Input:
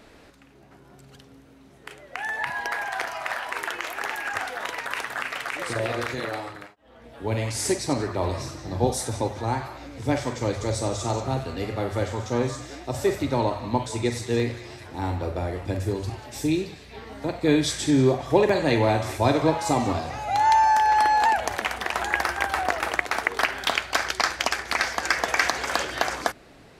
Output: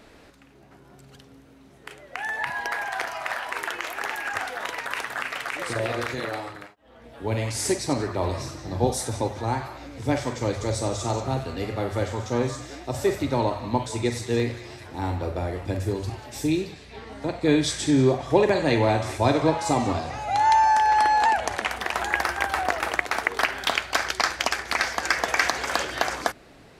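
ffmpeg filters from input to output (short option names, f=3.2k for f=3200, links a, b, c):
-filter_complex "[0:a]asettb=1/sr,asplit=3[a][b][c];[a]atrim=end=16.734[d];[b]atrim=start=16.73:end=21.71,asetpts=PTS-STARTPTS,afade=t=in:d=0.004:c=qsin,afade=t=out:st=4.976:d=0.004:c=qsin,lowpass=f=11k:w=0.5412,lowpass=f=11k:w=1.3066[e];[c]atrim=start=21.706[f];[d][e]acrossfade=d=0.004:c1=hsin:c2=qsin[g];[g][f]acrossfade=d=0.004:c1=qsin:c2=hsin"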